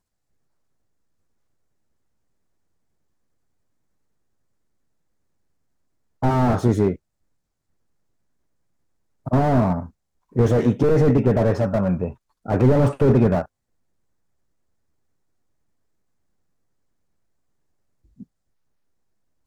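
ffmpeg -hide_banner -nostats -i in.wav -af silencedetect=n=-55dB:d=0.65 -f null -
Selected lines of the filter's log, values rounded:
silence_start: 0.00
silence_end: 6.22 | silence_duration: 6.22
silence_start: 6.97
silence_end: 9.26 | silence_duration: 2.29
silence_start: 13.46
silence_end: 18.04 | silence_duration: 4.59
silence_start: 18.24
silence_end: 19.47 | silence_duration: 1.23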